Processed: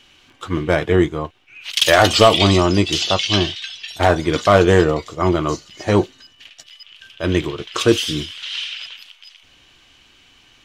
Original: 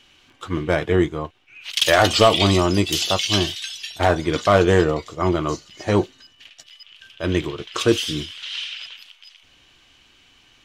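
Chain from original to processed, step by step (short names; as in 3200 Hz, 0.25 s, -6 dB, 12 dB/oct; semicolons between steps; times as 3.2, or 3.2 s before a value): 2.36–3.87 LPF 9200 Hz -> 3400 Hz 12 dB/oct; gain +3 dB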